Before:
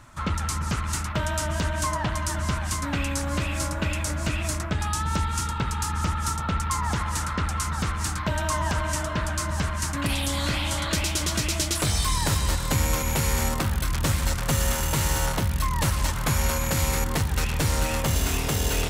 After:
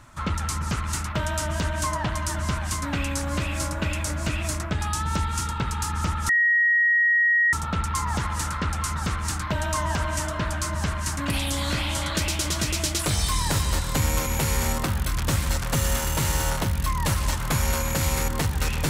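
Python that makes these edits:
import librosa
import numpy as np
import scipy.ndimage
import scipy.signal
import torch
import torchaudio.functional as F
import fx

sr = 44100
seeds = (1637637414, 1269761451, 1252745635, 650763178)

y = fx.edit(x, sr, fx.insert_tone(at_s=6.29, length_s=1.24, hz=1890.0, db=-16.5), tone=tone)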